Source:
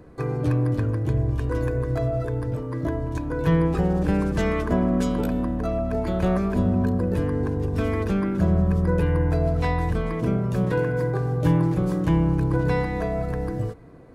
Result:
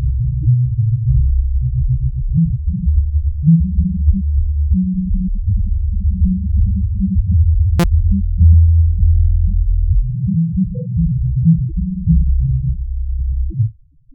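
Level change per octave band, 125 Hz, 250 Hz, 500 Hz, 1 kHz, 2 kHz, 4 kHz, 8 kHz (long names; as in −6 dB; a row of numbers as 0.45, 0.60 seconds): +9.5 dB, +3.5 dB, −15.0 dB, −10.5 dB, −9.5 dB, −0.5 dB, can't be measured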